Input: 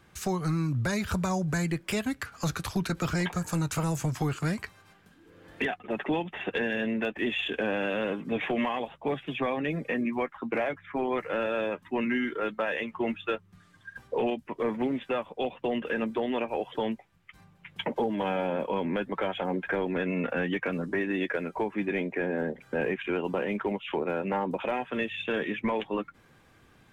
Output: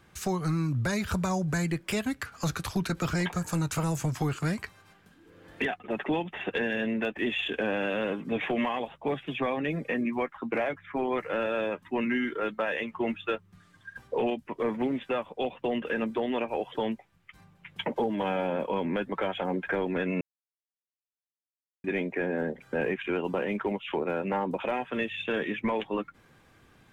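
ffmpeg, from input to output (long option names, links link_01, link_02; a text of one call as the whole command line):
ffmpeg -i in.wav -filter_complex "[0:a]asplit=3[link_01][link_02][link_03];[link_01]atrim=end=20.21,asetpts=PTS-STARTPTS,afade=type=out:start_time=20.206:duration=0.004:curve=hsin[link_04];[link_02]atrim=start=20.21:end=21.84,asetpts=PTS-STARTPTS,volume=0[link_05];[link_03]atrim=start=21.84,asetpts=PTS-STARTPTS,afade=type=in:duration=0.004:curve=hsin[link_06];[link_04][link_05][link_06]concat=n=3:v=0:a=1" out.wav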